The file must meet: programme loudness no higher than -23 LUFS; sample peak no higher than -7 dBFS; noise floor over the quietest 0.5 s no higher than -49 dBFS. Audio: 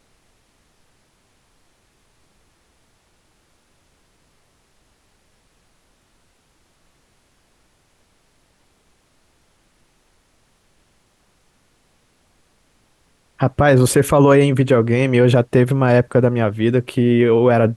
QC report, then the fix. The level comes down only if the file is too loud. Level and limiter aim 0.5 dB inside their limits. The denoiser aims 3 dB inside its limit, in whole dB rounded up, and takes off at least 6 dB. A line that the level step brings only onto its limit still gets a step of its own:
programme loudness -15.0 LUFS: fail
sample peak -3.0 dBFS: fail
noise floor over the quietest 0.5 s -60 dBFS: pass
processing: trim -8.5 dB

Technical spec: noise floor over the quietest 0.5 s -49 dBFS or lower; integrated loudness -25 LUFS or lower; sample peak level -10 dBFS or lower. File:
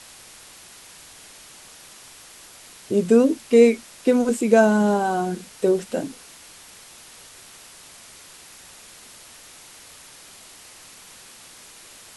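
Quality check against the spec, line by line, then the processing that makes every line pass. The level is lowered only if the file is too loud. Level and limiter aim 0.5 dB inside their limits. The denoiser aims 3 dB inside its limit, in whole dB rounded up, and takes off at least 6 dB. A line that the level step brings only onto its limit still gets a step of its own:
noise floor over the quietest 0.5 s -46 dBFS: fail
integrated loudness -19.5 LUFS: fail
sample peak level -3.0 dBFS: fail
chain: trim -6 dB; peak limiter -10.5 dBFS

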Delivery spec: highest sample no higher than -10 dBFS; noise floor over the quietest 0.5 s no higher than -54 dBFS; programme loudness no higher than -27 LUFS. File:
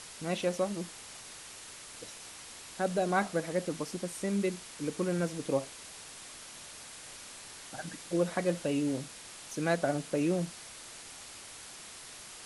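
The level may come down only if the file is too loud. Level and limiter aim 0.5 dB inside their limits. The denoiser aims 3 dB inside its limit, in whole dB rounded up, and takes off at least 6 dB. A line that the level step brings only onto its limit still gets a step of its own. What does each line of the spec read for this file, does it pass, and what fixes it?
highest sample -14.0 dBFS: pass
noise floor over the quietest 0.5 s -48 dBFS: fail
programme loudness -35.5 LUFS: pass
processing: noise reduction 9 dB, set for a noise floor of -48 dBFS

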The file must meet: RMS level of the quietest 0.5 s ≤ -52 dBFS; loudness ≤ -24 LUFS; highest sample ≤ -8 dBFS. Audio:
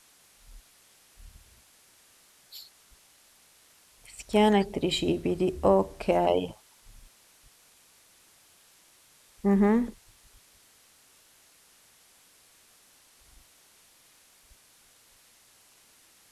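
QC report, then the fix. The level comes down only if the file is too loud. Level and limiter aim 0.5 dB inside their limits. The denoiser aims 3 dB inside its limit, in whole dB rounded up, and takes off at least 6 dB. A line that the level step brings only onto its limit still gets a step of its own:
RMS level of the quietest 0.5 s -60 dBFS: pass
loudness -26.0 LUFS: pass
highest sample -9.5 dBFS: pass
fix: none needed

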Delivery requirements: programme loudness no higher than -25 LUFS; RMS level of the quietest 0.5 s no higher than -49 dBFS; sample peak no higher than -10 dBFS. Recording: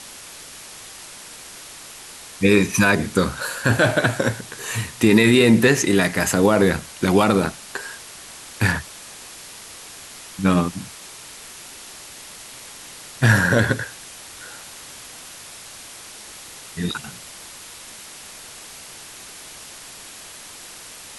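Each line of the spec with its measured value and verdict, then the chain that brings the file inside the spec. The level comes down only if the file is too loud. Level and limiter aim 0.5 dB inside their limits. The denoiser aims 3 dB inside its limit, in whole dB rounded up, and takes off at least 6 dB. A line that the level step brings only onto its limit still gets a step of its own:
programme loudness -19.0 LUFS: fail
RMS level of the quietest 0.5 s -40 dBFS: fail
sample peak -4.0 dBFS: fail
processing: noise reduction 6 dB, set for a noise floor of -40 dBFS; trim -6.5 dB

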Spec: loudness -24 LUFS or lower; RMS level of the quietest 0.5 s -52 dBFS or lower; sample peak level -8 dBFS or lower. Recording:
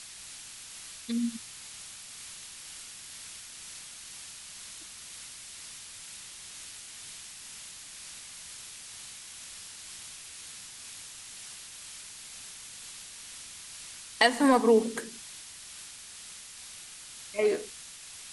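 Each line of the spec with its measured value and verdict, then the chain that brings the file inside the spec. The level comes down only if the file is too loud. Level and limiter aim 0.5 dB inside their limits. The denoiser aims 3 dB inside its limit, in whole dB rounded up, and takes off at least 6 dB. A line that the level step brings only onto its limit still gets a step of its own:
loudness -35.0 LUFS: pass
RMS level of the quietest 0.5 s -46 dBFS: fail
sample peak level -5.0 dBFS: fail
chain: noise reduction 9 dB, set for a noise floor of -46 dBFS; peak limiter -8.5 dBFS

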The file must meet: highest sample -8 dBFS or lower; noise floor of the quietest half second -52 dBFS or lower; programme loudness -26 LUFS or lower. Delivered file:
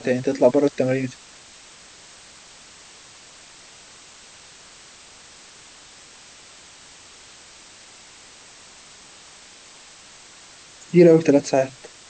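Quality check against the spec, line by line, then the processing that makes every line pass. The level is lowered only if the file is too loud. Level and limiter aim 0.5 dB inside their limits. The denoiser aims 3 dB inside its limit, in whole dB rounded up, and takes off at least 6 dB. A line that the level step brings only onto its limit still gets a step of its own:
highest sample -4.0 dBFS: fail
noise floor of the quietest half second -46 dBFS: fail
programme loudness -18.5 LUFS: fail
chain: trim -8 dB

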